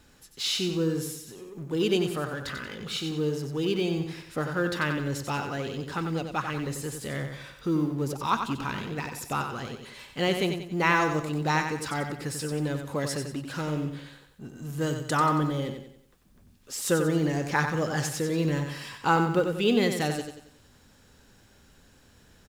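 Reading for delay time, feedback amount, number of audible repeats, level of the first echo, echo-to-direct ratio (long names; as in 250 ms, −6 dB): 92 ms, 41%, 4, −7.0 dB, −6.0 dB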